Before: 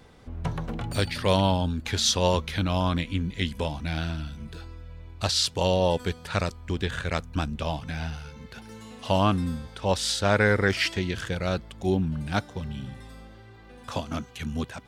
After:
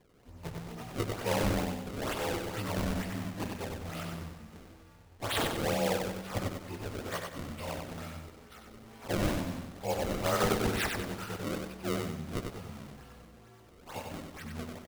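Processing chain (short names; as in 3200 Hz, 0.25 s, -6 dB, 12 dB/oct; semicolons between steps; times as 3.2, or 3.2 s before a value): inharmonic rescaling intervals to 92%; low shelf 340 Hz -8.5 dB; spring tank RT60 2.4 s, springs 37 ms, chirp 50 ms, DRR 13.5 dB; decimation with a swept rate 30×, swing 160% 2.2 Hz; 1.76–2.46 tube stage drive 24 dB, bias 0.5; feedback echo 95 ms, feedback 40%, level -4.5 dB; gain -4 dB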